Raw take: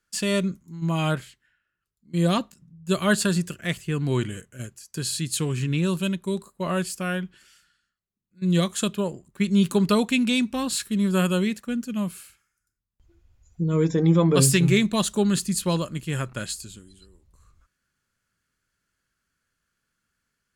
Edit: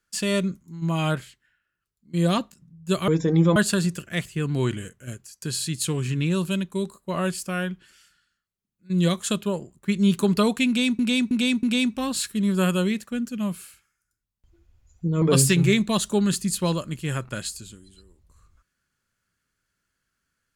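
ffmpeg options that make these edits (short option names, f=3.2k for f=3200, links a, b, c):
-filter_complex "[0:a]asplit=7[a][b][c][d][e][f][g];[a]atrim=end=3.082[h];[b]atrim=start=13.778:end=14.262[i];[c]atrim=start=3.078:end=10.512[j];[d]atrim=start=10.188:end=10.512[k];[e]atrim=start=10.188:end=10.512[l];[f]atrim=start=10.188:end=13.782[m];[g]atrim=start=14.258[n];[h][i]acrossfade=d=0.004:c1=hsin:c2=hsin[o];[o][j]acrossfade=d=0.004:c1=hsin:c2=hsin[p];[p][k]acrossfade=d=0.004:c1=hsin:c2=hsin[q];[q][l]acrossfade=d=0.004:c1=hsin:c2=hsin[r];[r][m]acrossfade=d=0.004:c1=hsin:c2=hsin[s];[s][n]acrossfade=d=0.004:c1=hsin:c2=hsin"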